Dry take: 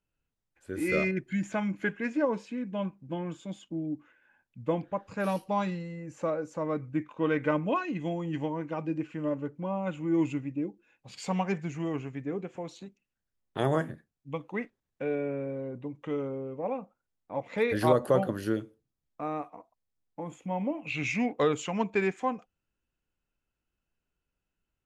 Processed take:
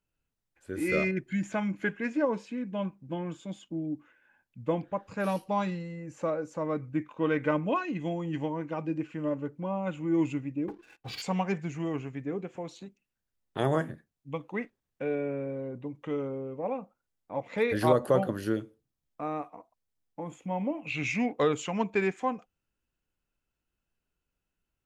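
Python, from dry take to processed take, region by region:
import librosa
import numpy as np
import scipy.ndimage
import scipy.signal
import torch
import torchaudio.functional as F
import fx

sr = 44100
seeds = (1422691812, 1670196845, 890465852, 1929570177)

y = fx.chain(x, sr, fx.lowpass(hz=5000.0, slope=24),
    fx.comb(ms=2.6, depth=0.54),
    fx.leveller(passes=3), at=(10.68, 11.22))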